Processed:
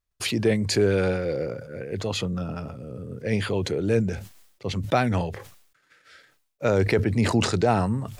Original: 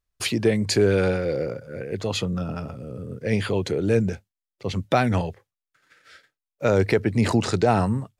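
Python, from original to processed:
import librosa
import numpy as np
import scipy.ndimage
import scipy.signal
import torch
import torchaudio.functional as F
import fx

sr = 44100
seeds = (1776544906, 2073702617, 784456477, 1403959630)

y = fx.sustainer(x, sr, db_per_s=79.0)
y = F.gain(torch.from_numpy(y), -2.0).numpy()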